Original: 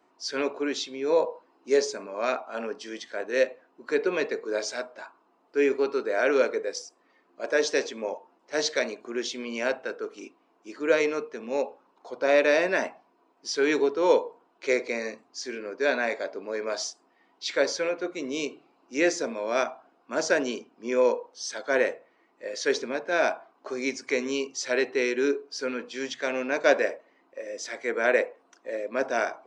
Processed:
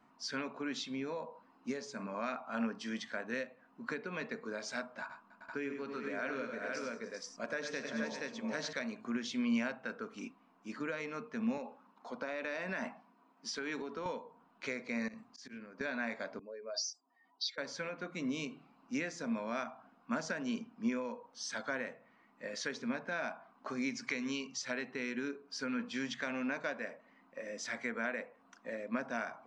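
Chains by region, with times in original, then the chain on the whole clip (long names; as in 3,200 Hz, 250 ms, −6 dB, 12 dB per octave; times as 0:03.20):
0:05.01–0:08.73: notch filter 810 Hz, Q 13 + multi-tap delay 85/99/123/291/396/474 ms −12/−9.5/−18/−19.5/−12/−5 dB
0:11.57–0:14.06: high-pass filter 170 Hz 24 dB per octave + downward compressor 3 to 1, threshold −26 dBFS
0:15.08–0:15.81: volume swells 122 ms + downward compressor 10 to 1, threshold −44 dBFS
0:16.39–0:17.58: expanding power law on the bin magnitudes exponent 2.1 + high-pass filter 860 Hz 6 dB per octave + high shelf with overshoot 3,200 Hz +14 dB, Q 1.5
0:23.95–0:24.62: low-pass filter 5,500 Hz + high-shelf EQ 3,000 Hz +9.5 dB
whole clip: downward compressor 6 to 1, threshold −32 dBFS; drawn EQ curve 230 Hz 0 dB, 350 Hz −20 dB, 1,200 Hz −8 dB, 5,800 Hz −15 dB; level +9 dB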